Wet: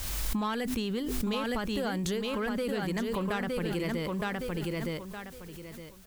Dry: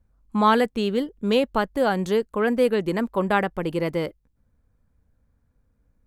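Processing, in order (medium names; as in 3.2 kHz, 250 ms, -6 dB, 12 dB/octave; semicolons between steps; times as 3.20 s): in parallel at -4 dB: saturation -19.5 dBFS, distortion -10 dB; on the sum: peaking EQ 570 Hz -9.5 dB 2.9 oct; word length cut 10-bit, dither triangular; on a send: feedback delay 915 ms, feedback 23%, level -5 dB; on the sum: compression, threshold -29 dBFS, peak gain reduction 11 dB; de-hum 126.5 Hz, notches 3; swell ahead of each attack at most 22 dB/s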